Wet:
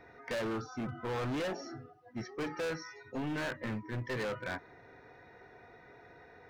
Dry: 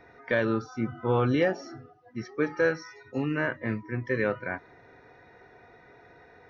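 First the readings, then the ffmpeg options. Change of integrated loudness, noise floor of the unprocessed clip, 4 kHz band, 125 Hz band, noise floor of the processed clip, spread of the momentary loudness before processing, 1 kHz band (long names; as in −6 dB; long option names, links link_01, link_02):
−9.0 dB, −56 dBFS, −1.0 dB, −8.5 dB, −58 dBFS, 13 LU, −6.5 dB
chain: -af "volume=31dB,asoftclip=hard,volume=-31dB,volume=-2dB"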